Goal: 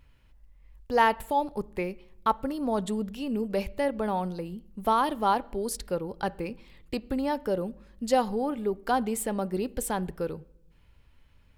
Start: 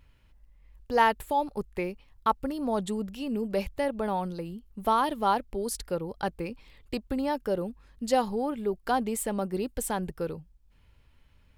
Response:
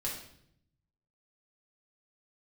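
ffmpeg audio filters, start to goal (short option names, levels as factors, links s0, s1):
-filter_complex "[0:a]asplit=2[s0][s1];[1:a]atrim=start_sample=2205,lowpass=3200[s2];[s1][s2]afir=irnorm=-1:irlink=0,volume=0.119[s3];[s0][s3]amix=inputs=2:normalize=0"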